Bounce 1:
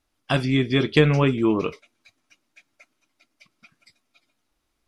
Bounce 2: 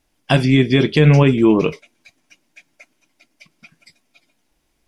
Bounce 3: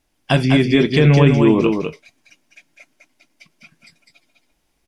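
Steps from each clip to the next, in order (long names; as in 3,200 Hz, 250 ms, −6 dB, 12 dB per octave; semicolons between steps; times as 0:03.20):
thirty-one-band graphic EQ 100 Hz −6 dB, 160 Hz +5 dB, 1,250 Hz −9 dB, 4,000 Hz −4 dB; boost into a limiter +10.5 dB; level −2.5 dB
single-tap delay 203 ms −5 dB; level −1 dB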